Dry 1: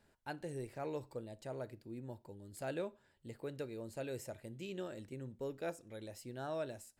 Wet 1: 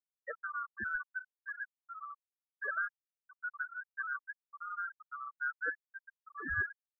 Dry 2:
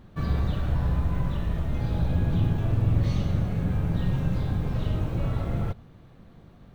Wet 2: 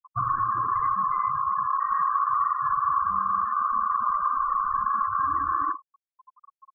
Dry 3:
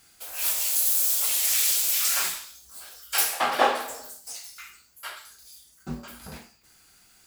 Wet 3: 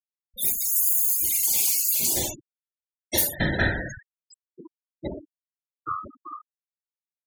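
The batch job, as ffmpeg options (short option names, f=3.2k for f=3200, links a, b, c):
-filter_complex "[0:a]afftfilt=real='real(if(lt(b,960),b+48*(1-2*mod(floor(b/48),2)),b),0)':imag='imag(if(lt(b,960),b+48*(1-2*mod(floor(b/48),2)),b),0)':win_size=2048:overlap=0.75,tiltshelf=f=690:g=5,aecho=1:1:31|52|62:0.188|0.316|0.15,asplit=2[a][b];[b]asoftclip=type=hard:threshold=-19dB,volume=-10dB[c];[a][c]amix=inputs=2:normalize=0,afftfilt=real='re*gte(hypot(re,im),0.0447)':imag='im*gte(hypot(re,im),0.0447)':win_size=1024:overlap=0.75,highshelf=f=4.6k:g=10.5,acompressor=threshold=-32dB:ratio=2,volume=5dB"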